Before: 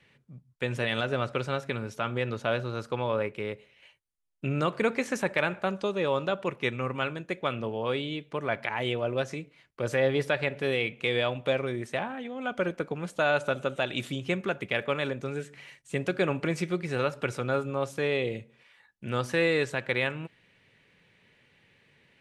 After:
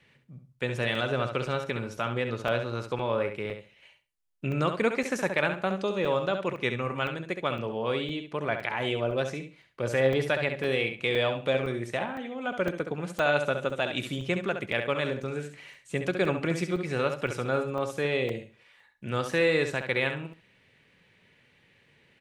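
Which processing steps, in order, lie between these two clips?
on a send: feedback echo 68 ms, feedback 19%, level -8 dB; on the sum: crackling interface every 0.51 s, samples 128, zero, from 0.95

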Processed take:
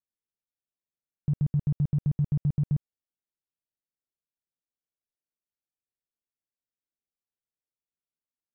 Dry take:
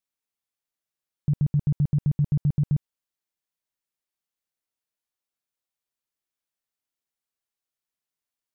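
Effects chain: Wiener smoothing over 41 samples; gain -3 dB

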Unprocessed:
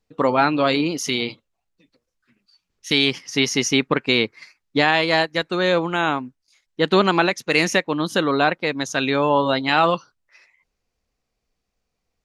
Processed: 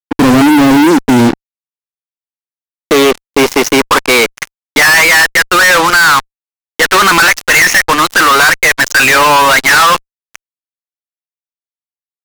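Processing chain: band-pass sweep 270 Hz -> 1700 Hz, 1.83–4.75; HPF 180 Hz 24 dB/oct; fuzz box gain 49 dB, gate -45 dBFS; gain +8 dB

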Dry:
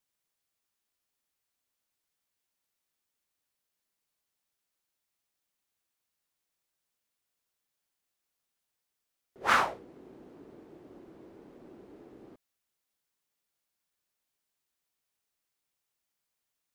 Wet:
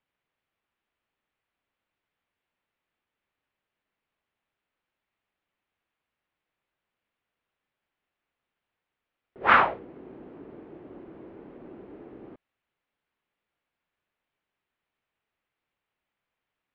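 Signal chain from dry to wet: LPF 2900 Hz 24 dB/oct; gain +6.5 dB

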